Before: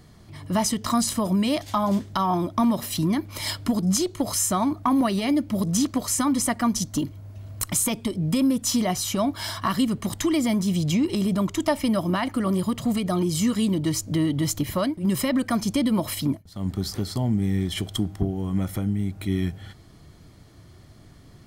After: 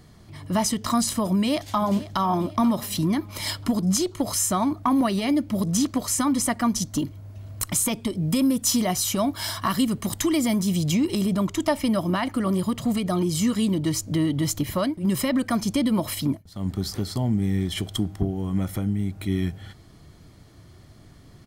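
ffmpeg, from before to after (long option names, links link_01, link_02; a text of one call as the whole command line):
ffmpeg -i in.wav -filter_complex "[0:a]asplit=2[link_01][link_02];[link_02]afade=type=in:start_time=1.31:duration=0.01,afade=type=out:start_time=2.19:duration=0.01,aecho=0:1:490|980|1470|1960:0.158489|0.0713202|0.0320941|0.0144423[link_03];[link_01][link_03]amix=inputs=2:normalize=0,asettb=1/sr,asplit=3[link_04][link_05][link_06];[link_04]atrim=end=8.164[link_07];[link_05]atrim=start=8.16:end=11.26,asetpts=PTS-STARTPTS,afade=type=in:duration=0.004:curve=qsin,afade=type=out:start_time=3.096:duration=0.004:curve=qsin,highshelf=frequency=7700:gain=7[link_08];[link_06]atrim=start=11.256[link_09];[link_07][link_08]acrossfade=duration=0.004:curve1=hsin:curve2=qsin[link_10];[link_10][link_09]acrossfade=duration=0.004:curve1=qsin:curve2=hsin" out.wav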